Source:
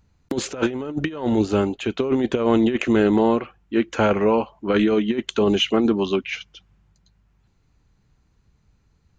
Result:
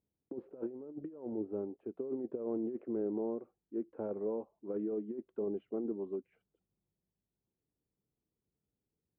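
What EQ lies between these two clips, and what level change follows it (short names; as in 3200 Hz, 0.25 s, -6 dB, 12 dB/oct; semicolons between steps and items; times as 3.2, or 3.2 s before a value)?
ladder low-pass 530 Hz, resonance 25%; differentiator; +13.5 dB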